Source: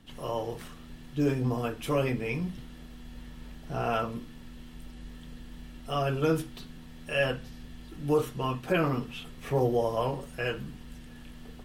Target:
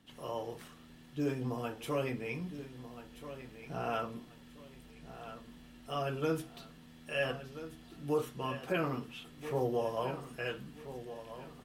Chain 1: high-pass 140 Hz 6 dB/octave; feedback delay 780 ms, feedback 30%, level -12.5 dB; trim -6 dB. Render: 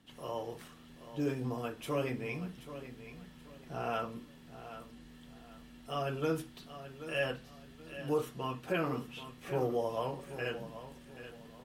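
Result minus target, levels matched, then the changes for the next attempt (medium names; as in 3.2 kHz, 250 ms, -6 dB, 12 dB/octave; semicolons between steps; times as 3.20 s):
echo 552 ms early
change: feedback delay 1332 ms, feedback 30%, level -12.5 dB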